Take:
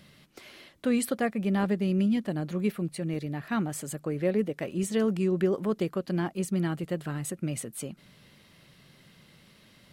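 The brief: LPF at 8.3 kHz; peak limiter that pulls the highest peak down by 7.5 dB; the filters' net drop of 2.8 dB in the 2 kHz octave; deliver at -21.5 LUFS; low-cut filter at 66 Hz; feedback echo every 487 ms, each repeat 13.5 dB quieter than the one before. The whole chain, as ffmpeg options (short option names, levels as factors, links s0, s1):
-af "highpass=66,lowpass=8300,equalizer=f=2000:t=o:g=-3.5,alimiter=limit=0.0794:level=0:latency=1,aecho=1:1:487|974:0.211|0.0444,volume=3.35"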